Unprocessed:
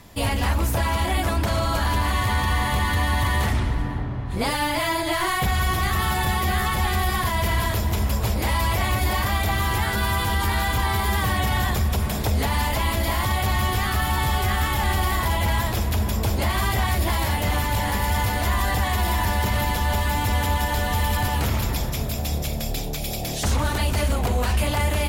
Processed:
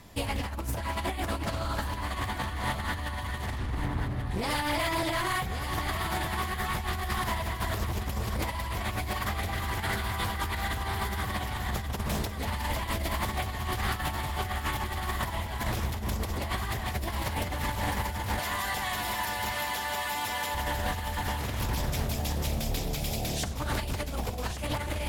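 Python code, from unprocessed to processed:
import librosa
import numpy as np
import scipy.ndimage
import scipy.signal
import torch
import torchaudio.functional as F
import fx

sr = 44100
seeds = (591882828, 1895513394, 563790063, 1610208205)

y = fx.highpass(x, sr, hz=900.0, slope=6, at=(18.39, 20.55))
y = fx.over_compress(y, sr, threshold_db=-24.0, ratio=-0.5)
y = y + 10.0 ** (-9.5 / 20.0) * np.pad(y, (int(1132 * sr / 1000.0), 0))[:len(y)]
y = fx.doppler_dist(y, sr, depth_ms=0.4)
y = y * librosa.db_to_amplitude(-6.5)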